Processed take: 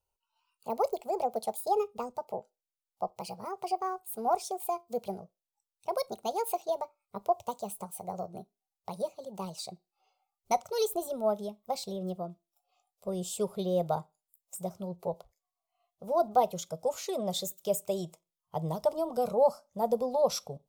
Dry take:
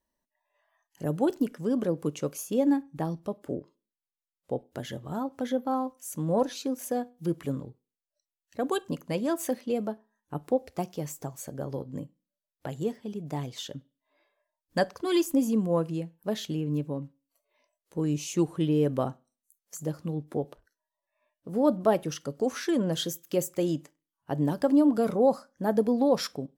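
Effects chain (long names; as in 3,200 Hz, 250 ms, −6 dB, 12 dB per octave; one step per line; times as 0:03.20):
gliding playback speed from 153% → 104%
phaser with its sweep stopped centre 710 Hz, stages 4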